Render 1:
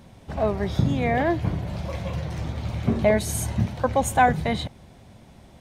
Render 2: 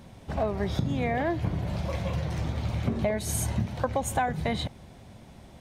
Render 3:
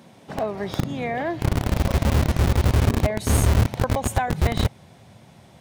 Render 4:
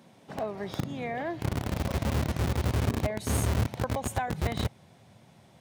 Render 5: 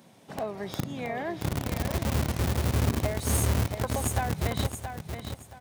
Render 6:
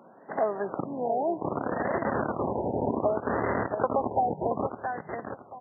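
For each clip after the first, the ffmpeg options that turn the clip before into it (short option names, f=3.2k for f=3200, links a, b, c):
-af "acompressor=threshold=-23dB:ratio=10"
-filter_complex "[0:a]asubboost=boost=7.5:cutoff=92,acrossover=split=130[a][b];[a]acrusher=bits=3:mix=0:aa=0.000001[c];[c][b]amix=inputs=2:normalize=0,volume=2.5dB"
-af "highpass=73,volume=-7dB"
-filter_complex "[0:a]highshelf=f=6.6k:g=8,asplit=2[a][b];[b]aecho=0:1:674|1348|2022:0.398|0.107|0.029[c];[a][c]amix=inputs=2:normalize=0"
-af "highpass=340,lowpass=2.7k,afftfilt=real='re*lt(b*sr/1024,940*pow(2100/940,0.5+0.5*sin(2*PI*0.64*pts/sr)))':imag='im*lt(b*sr/1024,940*pow(2100/940,0.5+0.5*sin(2*PI*0.64*pts/sr)))':win_size=1024:overlap=0.75,volume=7.5dB"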